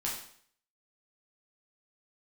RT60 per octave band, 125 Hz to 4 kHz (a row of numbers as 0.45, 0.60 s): 0.55, 0.55, 0.60, 0.55, 0.55, 0.55 s